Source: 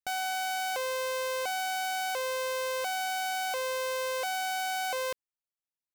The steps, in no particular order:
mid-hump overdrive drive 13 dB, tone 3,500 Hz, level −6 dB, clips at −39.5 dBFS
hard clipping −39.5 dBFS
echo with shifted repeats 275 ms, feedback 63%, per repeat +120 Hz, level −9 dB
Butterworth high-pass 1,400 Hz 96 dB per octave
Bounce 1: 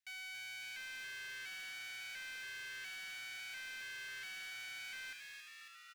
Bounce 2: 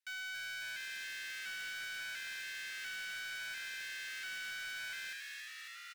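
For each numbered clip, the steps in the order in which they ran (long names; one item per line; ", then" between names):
hard clipping, then echo with shifted repeats, then Butterworth high-pass, then mid-hump overdrive
echo with shifted repeats, then mid-hump overdrive, then Butterworth high-pass, then hard clipping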